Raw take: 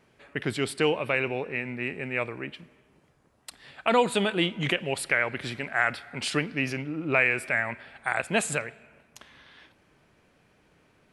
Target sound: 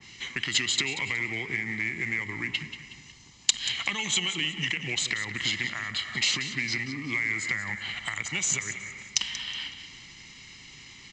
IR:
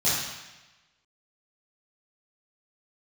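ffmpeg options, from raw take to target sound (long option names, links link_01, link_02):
-filter_complex "[0:a]equalizer=frequency=720:width_type=o:width=0.52:gain=-9.5,aecho=1:1:0.9:0.59,acrossover=split=88|350|1700[link_01][link_02][link_03][link_04];[link_01]acompressor=threshold=-59dB:ratio=4[link_05];[link_02]acompressor=threshold=-40dB:ratio=4[link_06];[link_03]acompressor=threshold=-39dB:ratio=4[link_07];[link_04]acompressor=threshold=-37dB:ratio=4[link_08];[link_05][link_06][link_07][link_08]amix=inputs=4:normalize=0,asplit=2[link_09][link_10];[link_10]alimiter=level_in=2.5dB:limit=-24dB:level=0:latency=1:release=65,volume=-2.5dB,volume=0dB[link_11];[link_09][link_11]amix=inputs=2:normalize=0,acompressor=threshold=-33dB:ratio=10,aexciter=amount=7.6:drive=5:freq=2300,asetrate=39289,aresample=44100,atempo=1.12246,aresample=16000,acrusher=bits=5:mode=log:mix=0:aa=0.000001,aresample=44100,aecho=1:1:184|368|552:0.266|0.0851|0.0272,adynamicequalizer=threshold=0.0126:dfrequency=2100:dqfactor=0.7:tfrequency=2100:tqfactor=0.7:attack=5:release=100:ratio=0.375:range=2.5:mode=cutabove:tftype=highshelf"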